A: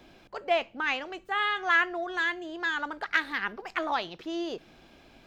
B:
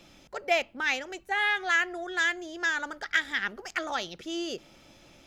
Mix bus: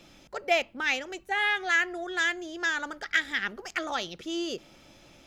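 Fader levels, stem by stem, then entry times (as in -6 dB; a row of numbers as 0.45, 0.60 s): -15.0, +0.5 dB; 0.00, 0.00 s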